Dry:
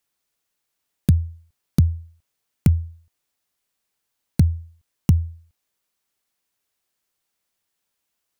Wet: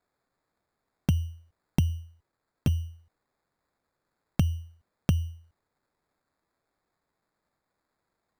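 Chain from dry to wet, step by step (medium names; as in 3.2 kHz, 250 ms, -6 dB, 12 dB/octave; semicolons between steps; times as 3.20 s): compression, threshold -16 dBFS, peak gain reduction 5.5 dB; 1.89–2.70 s: comb of notches 180 Hz; sample-and-hold 15×; trim -3.5 dB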